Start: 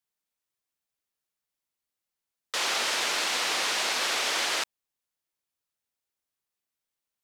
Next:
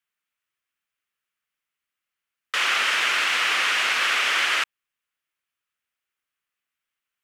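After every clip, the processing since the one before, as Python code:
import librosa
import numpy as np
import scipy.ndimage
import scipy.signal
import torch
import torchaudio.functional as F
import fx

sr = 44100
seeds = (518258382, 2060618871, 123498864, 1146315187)

y = fx.band_shelf(x, sr, hz=1900.0, db=11.0, octaves=1.7)
y = y * 10.0 ** (-2.0 / 20.0)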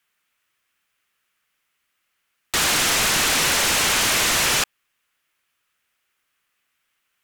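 y = fx.fold_sine(x, sr, drive_db=15, ceiling_db=-10.0)
y = y * 10.0 ** (-6.5 / 20.0)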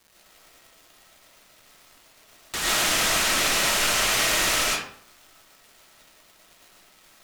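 y = fx.dmg_crackle(x, sr, seeds[0], per_s=390.0, level_db=-34.0)
y = fx.rev_freeverb(y, sr, rt60_s=0.58, hf_ratio=0.7, predelay_ms=70, drr_db=-5.5)
y = y * 10.0 ** (-9.0 / 20.0)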